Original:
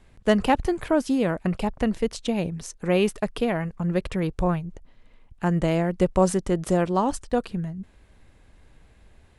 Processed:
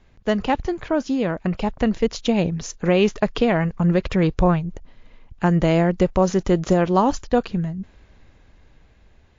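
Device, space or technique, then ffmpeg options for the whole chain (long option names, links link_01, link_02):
low-bitrate web radio: -af "dynaudnorm=framelen=260:gausssize=13:maxgain=15.5dB,alimiter=limit=-6dB:level=0:latency=1:release=220" -ar 16000 -c:a libmp3lame -b:a 48k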